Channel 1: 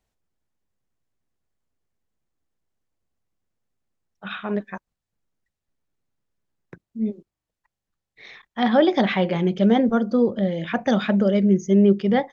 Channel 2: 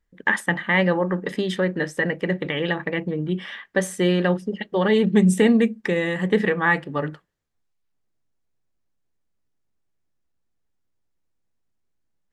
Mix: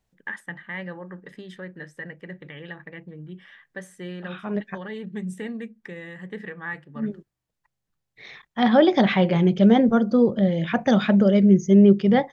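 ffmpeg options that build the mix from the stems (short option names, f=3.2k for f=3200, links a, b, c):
-filter_complex "[0:a]volume=0.5dB[a];[1:a]equalizer=f=1.7k:w=2.2:g=6,volume=-17.5dB,asplit=2[b][c];[c]apad=whole_len=543435[d];[a][d]sidechaincompress=threshold=-43dB:ratio=4:attack=16:release=313[e];[e][b]amix=inputs=2:normalize=0,equalizer=f=140:t=o:w=0.59:g=8"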